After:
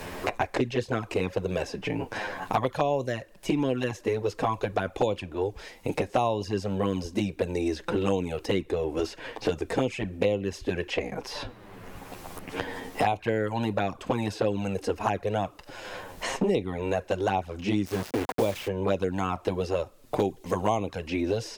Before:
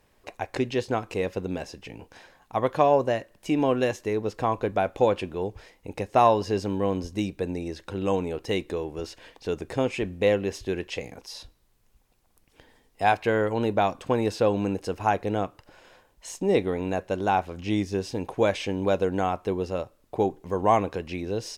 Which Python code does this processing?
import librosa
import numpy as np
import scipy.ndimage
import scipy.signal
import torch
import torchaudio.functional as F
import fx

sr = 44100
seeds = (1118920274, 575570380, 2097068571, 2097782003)

y = fx.rider(x, sr, range_db=4, speed_s=2.0)
y = fx.env_flanger(y, sr, rest_ms=11.6, full_db=-17.0)
y = fx.quant_dither(y, sr, seeds[0], bits=6, dither='none', at=(17.85, 18.67), fade=0.02)
y = fx.band_squash(y, sr, depth_pct=100)